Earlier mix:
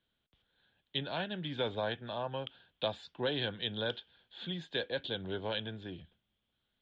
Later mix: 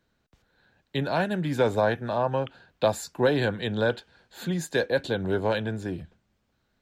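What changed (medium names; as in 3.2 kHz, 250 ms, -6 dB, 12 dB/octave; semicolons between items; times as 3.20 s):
background: add brick-wall FIR low-pass 3.5 kHz; master: remove four-pole ladder low-pass 3.5 kHz, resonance 80%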